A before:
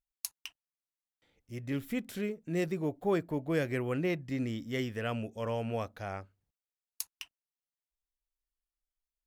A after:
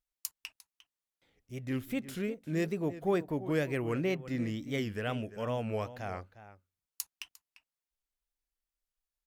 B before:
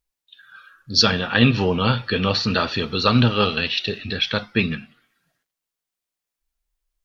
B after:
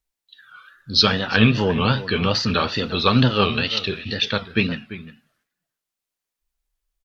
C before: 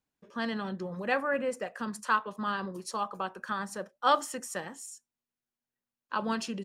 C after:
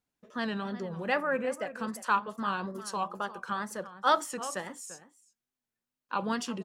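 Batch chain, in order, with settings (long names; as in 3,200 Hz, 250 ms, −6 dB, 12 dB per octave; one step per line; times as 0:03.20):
slap from a distant wall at 60 metres, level −14 dB
tape wow and flutter 120 cents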